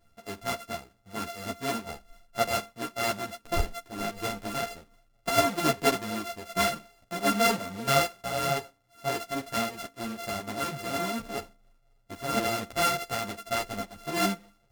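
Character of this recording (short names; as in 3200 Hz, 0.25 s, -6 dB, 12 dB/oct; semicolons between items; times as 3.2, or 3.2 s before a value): a buzz of ramps at a fixed pitch in blocks of 64 samples; tremolo triangle 4.3 Hz, depth 50%; a shimmering, thickened sound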